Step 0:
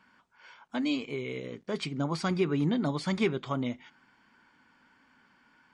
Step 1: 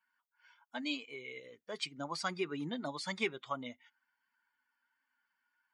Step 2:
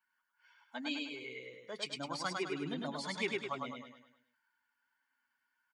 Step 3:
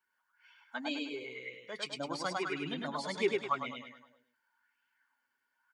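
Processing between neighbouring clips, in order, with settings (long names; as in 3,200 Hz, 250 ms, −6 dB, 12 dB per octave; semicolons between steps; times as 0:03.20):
spectral dynamics exaggerated over time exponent 1.5; high-pass filter 930 Hz 6 dB per octave; level +1 dB
repeating echo 103 ms, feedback 45%, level −3 dB; level −2 dB
auto-filter bell 0.93 Hz 380–2,800 Hz +10 dB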